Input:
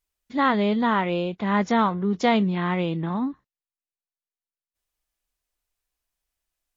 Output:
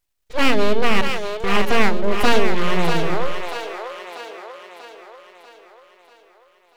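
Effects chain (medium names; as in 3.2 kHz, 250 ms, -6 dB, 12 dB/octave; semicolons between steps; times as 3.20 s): 1.01–1.44 s: differentiator; full-wave rectifier; two-band feedback delay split 400 Hz, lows 86 ms, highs 640 ms, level -6 dB; trim +6.5 dB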